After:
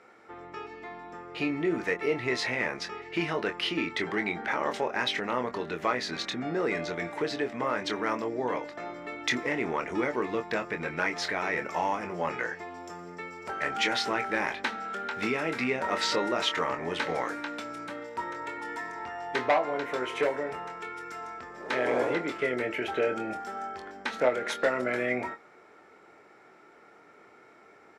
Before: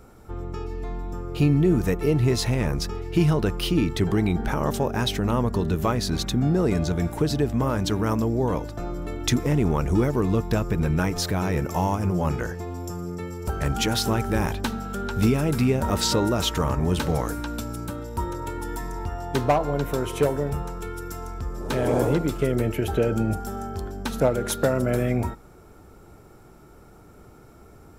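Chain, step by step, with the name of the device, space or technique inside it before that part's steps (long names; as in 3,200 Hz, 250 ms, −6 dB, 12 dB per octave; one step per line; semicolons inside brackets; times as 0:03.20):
intercom (band-pass filter 400–4,600 Hz; parametric band 2,000 Hz +12 dB 0.59 octaves; soft clipping −9.5 dBFS, distortion −26 dB; double-tracking delay 24 ms −7.5 dB)
level −3 dB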